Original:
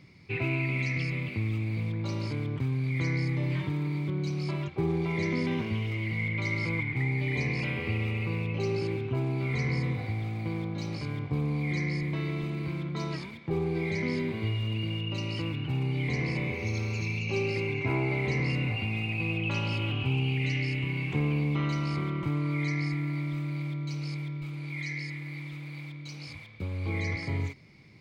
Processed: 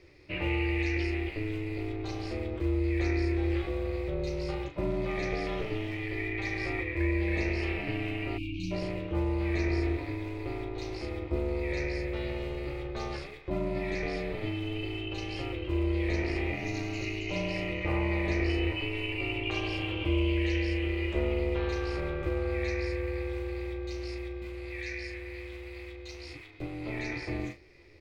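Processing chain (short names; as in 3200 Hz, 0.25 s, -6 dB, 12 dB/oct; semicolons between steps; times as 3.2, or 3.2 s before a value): ring modulator 210 Hz; early reflections 14 ms -7 dB, 38 ms -8 dB; spectral delete 8.38–8.71, 350–2200 Hz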